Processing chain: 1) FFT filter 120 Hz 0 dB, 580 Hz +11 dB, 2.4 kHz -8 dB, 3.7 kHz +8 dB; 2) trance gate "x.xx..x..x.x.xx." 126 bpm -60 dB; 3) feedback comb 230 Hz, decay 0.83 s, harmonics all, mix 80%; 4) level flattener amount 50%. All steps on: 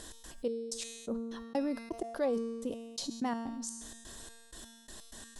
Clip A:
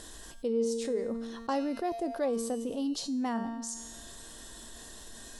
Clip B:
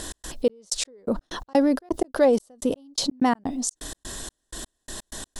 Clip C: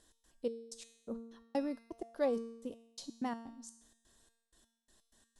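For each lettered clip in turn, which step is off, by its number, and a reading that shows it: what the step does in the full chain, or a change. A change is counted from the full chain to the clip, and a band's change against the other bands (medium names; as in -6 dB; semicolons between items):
2, 1 kHz band +3.0 dB; 3, loudness change +12.0 LU; 4, crest factor change +3.5 dB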